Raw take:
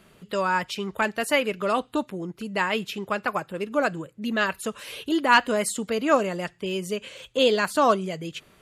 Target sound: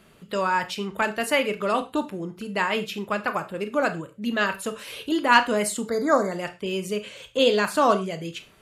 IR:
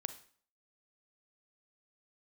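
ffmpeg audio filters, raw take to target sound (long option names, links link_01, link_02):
-filter_complex "[0:a]asettb=1/sr,asplit=3[link_01][link_02][link_03];[link_01]atrim=end=5.834[link_04];[link_02]atrim=start=5.83:end=6.32,asetpts=PTS-STARTPTS,afade=type=in:duration=0.004:curve=qsin,afade=type=out:start_time=0.486:duration=0.004:curve=qsin,asuperstop=centerf=2800:order=8:qfactor=1.8[link_05];[link_03]atrim=start=6.316[link_06];[link_04][link_05]acrossfade=duration=0.004:curve1=hsin:curve2=qsin[link_07];[link_07][link_06]acrossfade=duration=0.004:curve1=qsin:curve2=hsin[link_08];[1:a]atrim=start_sample=2205,afade=type=out:start_time=0.25:duration=0.01,atrim=end_sample=11466,asetrate=66150,aresample=44100[link_09];[link_08][link_09]afir=irnorm=-1:irlink=0,volume=5.5dB"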